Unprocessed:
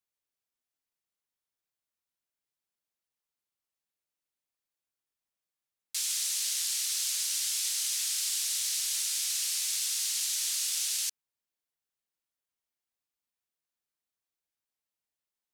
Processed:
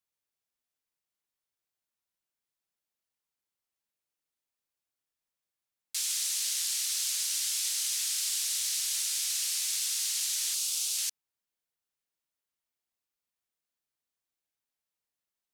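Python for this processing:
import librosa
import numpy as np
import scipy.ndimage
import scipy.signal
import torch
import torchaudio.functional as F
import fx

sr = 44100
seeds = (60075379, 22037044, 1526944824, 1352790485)

y = fx.peak_eq(x, sr, hz=1800.0, db=-11.5, octaves=0.57, at=(10.54, 10.97))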